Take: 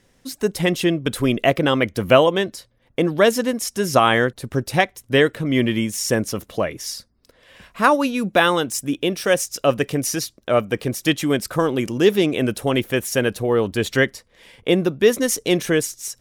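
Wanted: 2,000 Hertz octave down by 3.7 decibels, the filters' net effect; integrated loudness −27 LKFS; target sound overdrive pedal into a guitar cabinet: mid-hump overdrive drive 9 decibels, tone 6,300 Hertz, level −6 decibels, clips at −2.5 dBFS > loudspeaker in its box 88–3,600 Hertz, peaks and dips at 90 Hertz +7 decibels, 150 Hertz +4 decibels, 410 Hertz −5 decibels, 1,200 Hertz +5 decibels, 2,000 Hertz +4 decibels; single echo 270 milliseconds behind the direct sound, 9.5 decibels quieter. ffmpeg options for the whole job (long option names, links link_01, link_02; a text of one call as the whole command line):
ffmpeg -i in.wav -filter_complex "[0:a]equalizer=frequency=2000:width_type=o:gain=-7.5,aecho=1:1:270:0.335,asplit=2[link_01][link_02];[link_02]highpass=frequency=720:poles=1,volume=9dB,asoftclip=type=tanh:threshold=-2.5dB[link_03];[link_01][link_03]amix=inputs=2:normalize=0,lowpass=frequency=6300:poles=1,volume=-6dB,highpass=88,equalizer=frequency=90:width_type=q:width=4:gain=7,equalizer=frequency=150:width_type=q:width=4:gain=4,equalizer=frequency=410:width_type=q:width=4:gain=-5,equalizer=frequency=1200:width_type=q:width=4:gain=5,equalizer=frequency=2000:width_type=q:width=4:gain=4,lowpass=frequency=3600:width=0.5412,lowpass=frequency=3600:width=1.3066,volume=-7dB" out.wav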